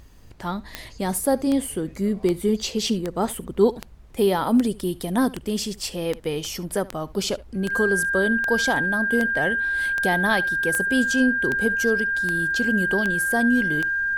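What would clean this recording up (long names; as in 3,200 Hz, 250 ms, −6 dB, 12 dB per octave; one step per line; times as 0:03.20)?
click removal
notch filter 1,600 Hz, Q 30
downward expander −33 dBFS, range −21 dB
echo removal 70 ms −20.5 dB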